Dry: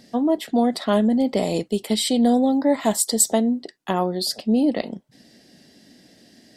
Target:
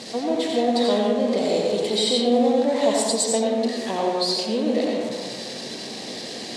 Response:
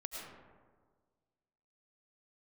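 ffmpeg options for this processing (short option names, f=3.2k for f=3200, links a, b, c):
-filter_complex "[0:a]aeval=exprs='val(0)+0.5*0.0596*sgn(val(0))':c=same,highpass=150,equalizer=f=170:t=q:w=4:g=-6,equalizer=f=270:t=q:w=4:g=-6,equalizer=f=480:t=q:w=4:g=7,equalizer=f=1.4k:t=q:w=4:g=-9,equalizer=f=4k:t=q:w=4:g=7,lowpass=f=8.7k:w=0.5412,lowpass=f=8.7k:w=1.3066[a];[1:a]atrim=start_sample=2205,asetrate=52920,aresample=44100[b];[a][b]afir=irnorm=-1:irlink=0"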